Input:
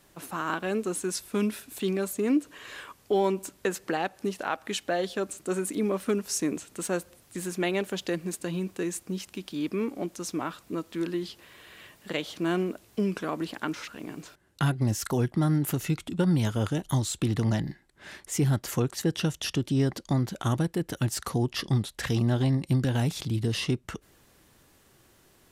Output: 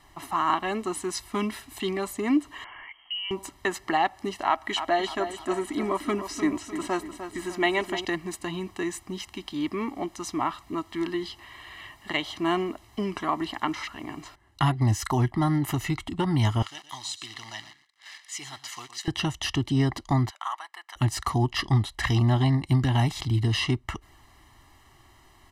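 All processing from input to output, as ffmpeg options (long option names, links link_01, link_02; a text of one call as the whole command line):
ffmpeg -i in.wav -filter_complex "[0:a]asettb=1/sr,asplit=3[link_01][link_02][link_03];[link_01]atrim=end=2.644[link_04];[link_02]atrim=start=2.64:end=3.31,asetpts=PTS-STARTPTS,afade=type=in:duration=0.004:curve=qsin,afade=type=out:start_time=0.666:duration=0.004:curve=qsin,acompressor=threshold=-49dB:ratio=2:attack=3.2:release=140:knee=1:detection=peak,lowpass=frequency=2800:width_type=q:width=0.5098,lowpass=frequency=2800:width_type=q:width=0.6013,lowpass=frequency=2800:width_type=q:width=0.9,lowpass=frequency=2800:width_type=q:width=2.563,afreqshift=-3300[link_05];[link_03]atrim=start=3.306[link_06];[link_04][link_05]acrossfade=duration=0.004:curve1=hsin:curve2=qsin[link_07];[link_07][link_06]acrossfade=duration=0.004:curve1=qsin:curve2=hsin,asettb=1/sr,asplit=3[link_08][link_09][link_10];[link_08]atrim=end=4.464[link_11];[link_09]atrim=start=4.46:end=8.05,asetpts=PTS-STARTPTS,afade=type=in:duration=0.004:curve=qsin,afade=type=out:start_time=3.586:duration=0.004:curve=qsin,aecho=1:1:3.1:0.32,atrim=end_sample=158319,asplit=2[link_12][link_13];[link_13]adelay=301,lowpass=frequency=4800:poles=1,volume=-9.5dB,asplit=2[link_14][link_15];[link_15]adelay=301,lowpass=frequency=4800:poles=1,volume=0.46,asplit=2[link_16][link_17];[link_17]adelay=301,lowpass=frequency=4800:poles=1,volume=0.46,asplit=2[link_18][link_19];[link_19]adelay=301,lowpass=frequency=4800:poles=1,volume=0.46,asplit=2[link_20][link_21];[link_21]adelay=301,lowpass=frequency=4800:poles=1,volume=0.46[link_22];[link_12][link_14][link_16][link_18][link_20][link_22]amix=inputs=6:normalize=0,atrim=end_sample=158319,acrossover=split=4700[link_23][link_24];[link_24]acompressor=threshold=-40dB:ratio=4:attack=1:release=60[link_25];[link_23][link_25]amix=inputs=2:normalize=0[link_26];[link_10]atrim=start=8.046[link_27];[link_11][link_26]acrossfade=duration=0.004:curve1=hsin:curve2=qsin[link_28];[link_28][link_27]acrossfade=duration=0.004:curve1=qsin:curve2=hsin,asettb=1/sr,asplit=3[link_29][link_30][link_31];[link_29]atrim=end=16.624[link_32];[link_30]atrim=start=16.62:end=19.08,asetpts=PTS-STARTPTS,afade=type=in:duration=0.004:curve=qsin,afade=type=out:start_time=2.456:duration=0.004:curve=qsin,acrusher=bits=8:dc=4:mix=0:aa=0.000001,bandpass=frequency=4500:width_type=q:width=0.86,aecho=1:1:118:0.211,atrim=end_sample=108486[link_33];[link_31]atrim=start=19.076[link_34];[link_32][link_33]acrossfade=duration=0.004:curve1=hsin:curve2=qsin[link_35];[link_35][link_34]acrossfade=duration=0.004:curve1=qsin:curve2=hsin,asettb=1/sr,asplit=3[link_36][link_37][link_38];[link_36]atrim=end=20.304[link_39];[link_37]atrim=start=20.3:end=20.96,asetpts=PTS-STARTPTS,afade=type=in:duration=0.004:curve=qsin,afade=type=out:start_time=0.656:duration=0.004:curve=qsin,highpass=frequency=1000:width=0.5412,highpass=frequency=1000:width=1.3066,highshelf=frequency=2400:gain=-9.5[link_40];[link_38]atrim=start=20.956[link_41];[link_39][link_40]acrossfade=duration=0.004:curve1=hsin:curve2=qsin[link_42];[link_42][link_41]acrossfade=duration=0.004:curve1=qsin:curve2=hsin,lowpass=frequency=2500:poles=1,equalizer=frequency=180:width=1.4:gain=-14,aecho=1:1:1:0.93,volume=5.5dB" out.wav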